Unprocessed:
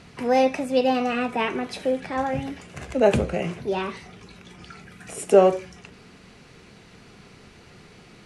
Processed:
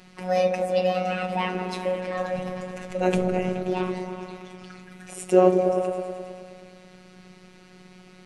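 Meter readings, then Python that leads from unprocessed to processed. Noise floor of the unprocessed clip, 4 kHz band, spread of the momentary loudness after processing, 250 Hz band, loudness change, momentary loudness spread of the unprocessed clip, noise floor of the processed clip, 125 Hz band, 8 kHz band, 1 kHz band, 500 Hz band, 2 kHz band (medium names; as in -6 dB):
-50 dBFS, -3.0 dB, 21 LU, -1.0 dB, -2.0 dB, 18 LU, -51 dBFS, +1.5 dB, -3.0 dB, -2.0 dB, -1.0 dB, -2.5 dB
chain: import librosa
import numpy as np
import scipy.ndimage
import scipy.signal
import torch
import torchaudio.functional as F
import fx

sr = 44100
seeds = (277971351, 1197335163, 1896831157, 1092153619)

y = fx.echo_opening(x, sr, ms=106, hz=400, octaves=1, feedback_pct=70, wet_db=-3)
y = fx.robotise(y, sr, hz=183.0)
y = y * librosa.db_to_amplitude(-1.0)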